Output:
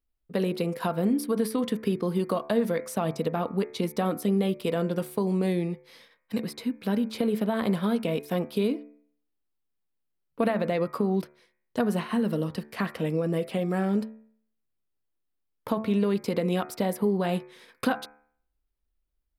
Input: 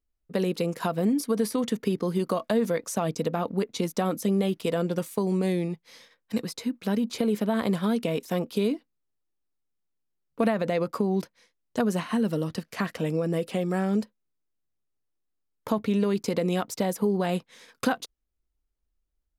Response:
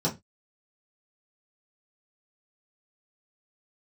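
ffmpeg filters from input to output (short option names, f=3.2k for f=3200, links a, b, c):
-af "equalizer=f=6.6k:w=2.1:g=-10.5,bandreject=f=73.27:t=h:w=4,bandreject=f=146.54:t=h:w=4,bandreject=f=219.81:t=h:w=4,bandreject=f=293.08:t=h:w=4,bandreject=f=366.35:t=h:w=4,bandreject=f=439.62:t=h:w=4,bandreject=f=512.89:t=h:w=4,bandreject=f=586.16:t=h:w=4,bandreject=f=659.43:t=h:w=4,bandreject=f=732.7:t=h:w=4,bandreject=f=805.97:t=h:w=4,bandreject=f=879.24:t=h:w=4,bandreject=f=952.51:t=h:w=4,bandreject=f=1.02578k:t=h:w=4,bandreject=f=1.09905k:t=h:w=4,bandreject=f=1.17232k:t=h:w=4,bandreject=f=1.24559k:t=h:w=4,bandreject=f=1.31886k:t=h:w=4,bandreject=f=1.39213k:t=h:w=4,bandreject=f=1.4654k:t=h:w=4,bandreject=f=1.53867k:t=h:w=4,bandreject=f=1.61194k:t=h:w=4,bandreject=f=1.68521k:t=h:w=4,bandreject=f=1.75848k:t=h:w=4,bandreject=f=1.83175k:t=h:w=4,bandreject=f=1.90502k:t=h:w=4,bandreject=f=1.97829k:t=h:w=4,bandreject=f=2.05156k:t=h:w=4,bandreject=f=2.12483k:t=h:w=4,bandreject=f=2.1981k:t=h:w=4,bandreject=f=2.27137k:t=h:w=4,bandreject=f=2.34464k:t=h:w=4,bandreject=f=2.41791k:t=h:w=4,bandreject=f=2.49118k:t=h:w=4"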